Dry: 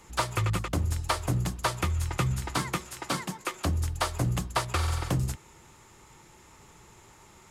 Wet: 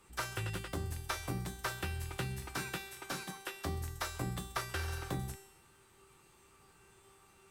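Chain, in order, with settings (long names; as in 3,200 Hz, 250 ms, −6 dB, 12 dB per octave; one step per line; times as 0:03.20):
formants moved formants +3 semitones
harmonic generator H 2 −17 dB, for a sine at −12 dBFS
tuned comb filter 390 Hz, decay 0.85 s, mix 90%
level +8 dB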